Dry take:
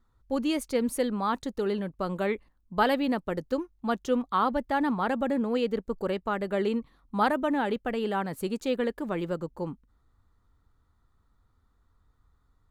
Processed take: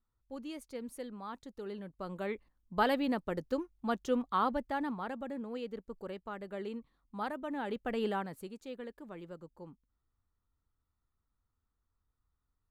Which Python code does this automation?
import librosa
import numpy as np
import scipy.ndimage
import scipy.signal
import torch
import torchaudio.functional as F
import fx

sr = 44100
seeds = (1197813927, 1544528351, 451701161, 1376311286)

y = fx.gain(x, sr, db=fx.line((1.44, -15.5), (2.77, -5.0), (4.46, -5.0), (5.19, -13.0), (7.42, -13.0), (8.05, -3.0), (8.54, -16.0)))